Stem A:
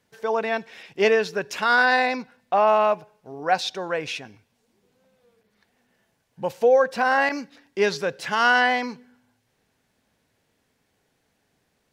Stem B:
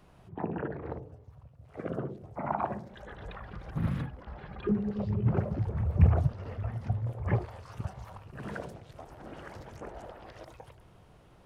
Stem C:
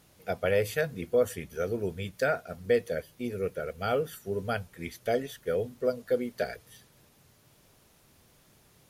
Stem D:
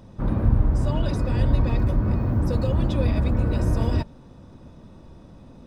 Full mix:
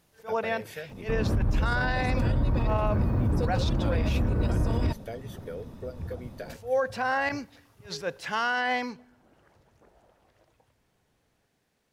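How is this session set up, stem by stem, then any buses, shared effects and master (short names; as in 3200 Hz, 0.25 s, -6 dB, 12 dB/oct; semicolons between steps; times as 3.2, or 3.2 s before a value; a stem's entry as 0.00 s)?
-4.0 dB, 0.00 s, no send, attack slew limiter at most 240 dB/s
-17.0 dB, 0.00 s, no send, dry
-6.5 dB, 0.00 s, no send, compressor, threshold -28 dBFS, peak gain reduction 9 dB
0.0 dB, 0.90 s, no send, dry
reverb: off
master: limiter -17.5 dBFS, peak gain reduction 11 dB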